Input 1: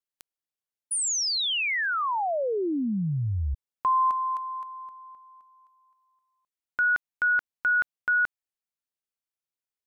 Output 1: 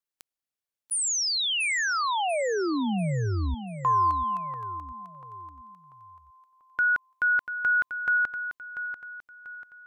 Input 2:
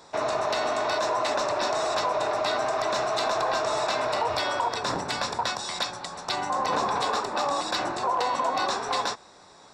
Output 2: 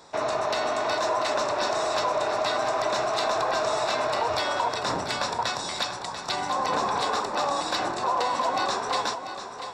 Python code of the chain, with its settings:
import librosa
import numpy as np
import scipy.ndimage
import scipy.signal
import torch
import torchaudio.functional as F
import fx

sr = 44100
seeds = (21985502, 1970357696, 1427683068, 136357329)

y = fx.echo_feedback(x, sr, ms=690, feedback_pct=39, wet_db=-10)